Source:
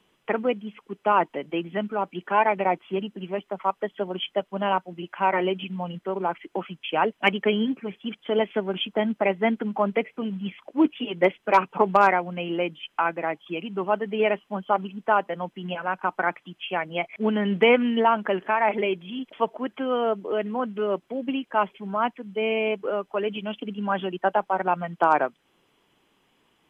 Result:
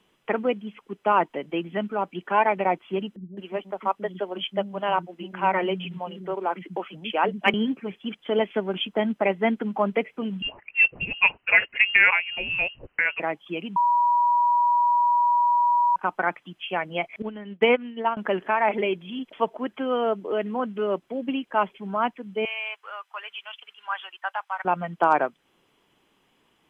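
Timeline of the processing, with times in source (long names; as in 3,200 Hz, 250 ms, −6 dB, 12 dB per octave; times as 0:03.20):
0:03.16–0:07.54: multiband delay without the direct sound lows, highs 210 ms, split 250 Hz
0:10.42–0:13.20: voice inversion scrambler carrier 3,000 Hz
0:13.76–0:15.96: beep over 965 Hz −17 dBFS
0:17.22–0:18.17: expander for the loud parts 2.5 to 1, over −32 dBFS
0:22.45–0:24.65: high-pass filter 1,000 Hz 24 dB per octave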